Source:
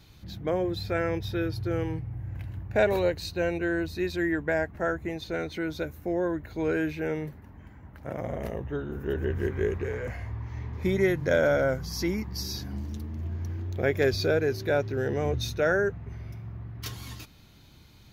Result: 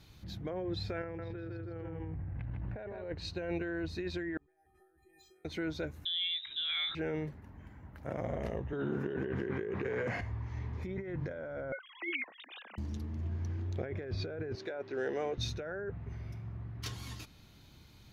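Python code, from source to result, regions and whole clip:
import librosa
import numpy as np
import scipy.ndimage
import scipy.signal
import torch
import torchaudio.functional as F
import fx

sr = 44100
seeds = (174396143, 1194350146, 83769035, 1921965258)

y = fx.chain(x, sr, fx.echo_single(ms=154, db=-4.0),
    fx.env_flatten(amount_pct=70), at=(1.03, 3.04))
y = fx.chain(y, sr, fx.over_compress(threshold_db=-39.0, ratio=-1.0),
    fx.stiff_resonator(f0_hz=370.0, decay_s=0.58, stiffness=0.03),
    fx.resample_bad(factor=4, down='filtered', up='hold'), at=(4.37, 5.45))
y = fx.chain(y, sr, fx.freq_invert(carrier_hz=3800),
    fx.peak_eq(hz=460.0, db=-3.5, octaves=0.27), at=(6.05, 6.95))
y = fx.chain(y, sr, fx.highpass(hz=130.0, slope=24),
    fx.env_flatten(amount_pct=50), at=(8.73, 10.21))
y = fx.chain(y, sr, fx.sine_speech(),
    fx.highpass(hz=640.0, slope=12),
    fx.peak_eq(hz=2800.0, db=14.0, octaves=1.3), at=(11.72, 12.78))
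y = fx.chain(y, sr, fx.highpass(hz=340.0, slope=12),
    fx.resample_bad(factor=2, down='filtered', up='hold'), at=(14.55, 15.38))
y = fx.env_lowpass_down(y, sr, base_hz=2000.0, full_db=-21.0)
y = fx.over_compress(y, sr, threshold_db=-30.0, ratio=-1.0)
y = y * librosa.db_to_amplitude(-7.0)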